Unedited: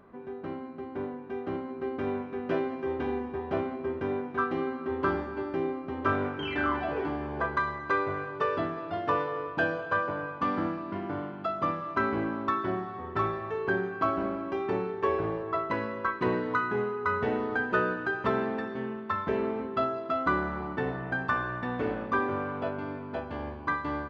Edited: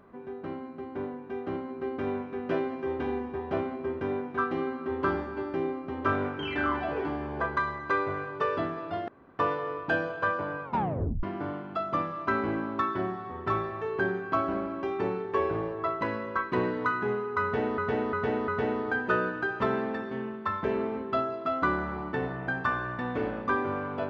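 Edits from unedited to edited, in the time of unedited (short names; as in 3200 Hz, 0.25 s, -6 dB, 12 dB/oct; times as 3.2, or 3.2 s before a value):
9.08 insert room tone 0.31 s
10.33 tape stop 0.59 s
17.12–17.47 loop, 4 plays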